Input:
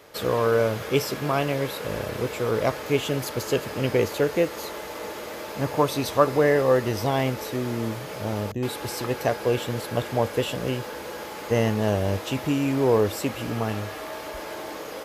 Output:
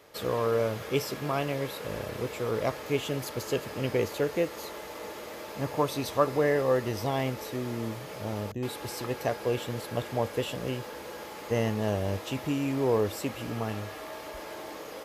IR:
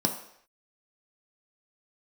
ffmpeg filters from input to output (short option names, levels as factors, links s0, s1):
-af "bandreject=f=1500:w=25,volume=0.531"